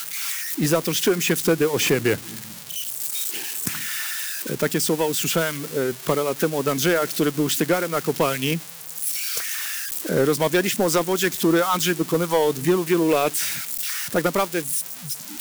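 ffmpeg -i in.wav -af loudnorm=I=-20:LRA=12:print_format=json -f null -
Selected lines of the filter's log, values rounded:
"input_i" : "-22.3",
"input_tp" : "-10.6",
"input_lra" : "2.4",
"input_thresh" : "-32.4",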